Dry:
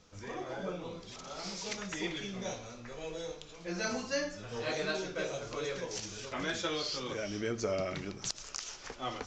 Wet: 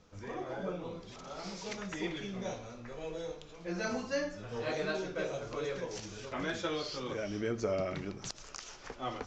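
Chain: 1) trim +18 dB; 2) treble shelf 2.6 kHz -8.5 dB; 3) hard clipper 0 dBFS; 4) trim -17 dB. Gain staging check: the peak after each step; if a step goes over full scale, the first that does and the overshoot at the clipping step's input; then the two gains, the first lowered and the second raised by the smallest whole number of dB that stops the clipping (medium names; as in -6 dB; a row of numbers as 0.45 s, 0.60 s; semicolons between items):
-1.0 dBFS, -4.0 dBFS, -4.0 dBFS, -21.0 dBFS; nothing clips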